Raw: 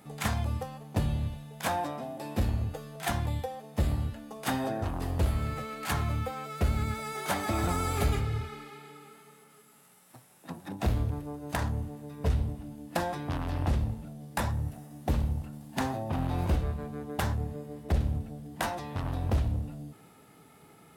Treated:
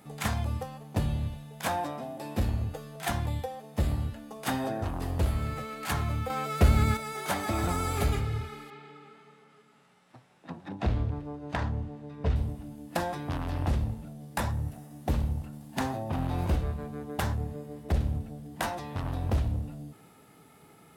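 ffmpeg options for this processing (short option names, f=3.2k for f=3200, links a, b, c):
-filter_complex "[0:a]asettb=1/sr,asplit=3[a][b][c];[a]atrim=end=8.704[d];[b]atrim=start=8.7:end=12.36,asetpts=PTS-STARTPTS,afade=t=in:d=0.004:c=qsin,afade=t=out:st=3.656:d=0.004:c=qsin,lowpass=4.1k[e];[c]atrim=start=12.356[f];[d][e]acrossfade=d=0.004:c1=hsin:c2=qsin[g];[g][f]acrossfade=d=0.004:c1=qsin:c2=hsin,asplit=3[h][i][j];[h]atrim=end=6.302[k];[i]atrim=start=6.298:end=6.972,asetpts=PTS-STARTPTS,volume=6.5dB[l];[j]atrim=start=6.968[m];[k][l]acrossfade=d=0.004:c1=hsin:c2=hsin[n];[n][m]acrossfade=d=0.004:c1=hsin:c2=hsin"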